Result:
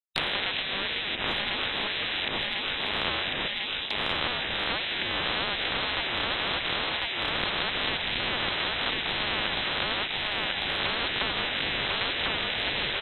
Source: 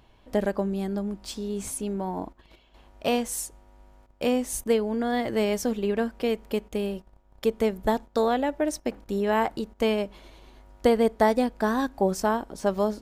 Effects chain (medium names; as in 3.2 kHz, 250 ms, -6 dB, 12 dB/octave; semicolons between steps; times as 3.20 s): reverse spectral sustain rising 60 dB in 0.49 s; small samples zeroed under -38 dBFS; distance through air 320 m; one-sided clip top -16.5 dBFS; on a send: feedback delay 1047 ms, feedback 37%, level -6 dB; on the sum: frequency inversion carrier 3.7 kHz; gate with hold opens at -38 dBFS; upward compressor, threshold -25 dBFS; peaking EQ 1.2 kHz -6.5 dB 0.77 oct; spectrum-flattening compressor 10:1